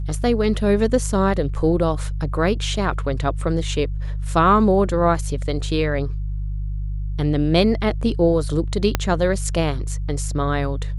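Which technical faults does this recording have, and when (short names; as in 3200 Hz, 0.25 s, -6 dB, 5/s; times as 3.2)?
hum 50 Hz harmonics 3 -25 dBFS
8.95 pop -3 dBFS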